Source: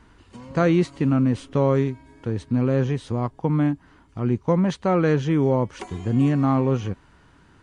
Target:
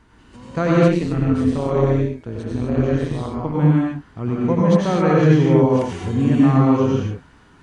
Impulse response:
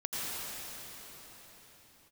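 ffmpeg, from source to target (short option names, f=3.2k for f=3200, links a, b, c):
-filter_complex "[1:a]atrim=start_sample=2205,afade=t=out:st=0.32:d=0.01,atrim=end_sample=14553[a];[0:a][a]afir=irnorm=-1:irlink=0,asettb=1/sr,asplit=3[b][c][d];[b]atrim=end=0.884[e];[c]atrim=start=0.88:end=3.55,asetpts=PTS-STARTPTS,afade=t=in:d=0.004:c=qsin,afade=t=out:st=2.666:d=0.004:c=qsin,tremolo=f=170:d=0.667[f];[d]atrim=start=3.546[g];[e][f]acrossfade=d=0.004:c1=hsin:c2=qsin[h];[h][g]acrossfade=d=0.004:c1=qsin:c2=hsin,volume=1.5dB"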